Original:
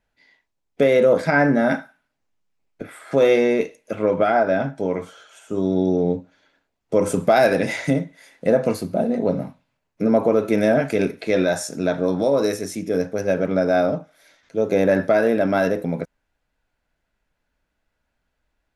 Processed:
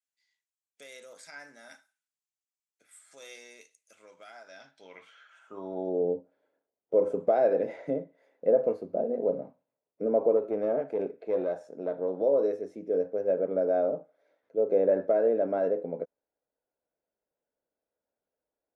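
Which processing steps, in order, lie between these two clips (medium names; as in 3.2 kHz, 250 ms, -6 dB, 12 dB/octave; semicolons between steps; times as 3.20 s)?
10.37–12.21 s: valve stage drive 12 dB, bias 0.55; band-pass sweep 7.8 kHz -> 490 Hz, 4.40–6.01 s; trim -3.5 dB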